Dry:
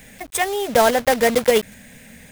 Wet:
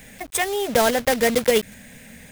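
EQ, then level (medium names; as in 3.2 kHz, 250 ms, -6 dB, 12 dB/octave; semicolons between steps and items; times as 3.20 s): dynamic bell 850 Hz, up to -5 dB, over -25 dBFS, Q 0.81; 0.0 dB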